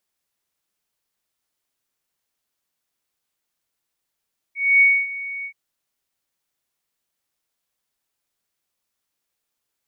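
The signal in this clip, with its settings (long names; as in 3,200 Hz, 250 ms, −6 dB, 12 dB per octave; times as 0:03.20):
note with an ADSR envelope sine 2,230 Hz, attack 257 ms, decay 259 ms, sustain −17.5 dB, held 0.90 s, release 77 ms −9.5 dBFS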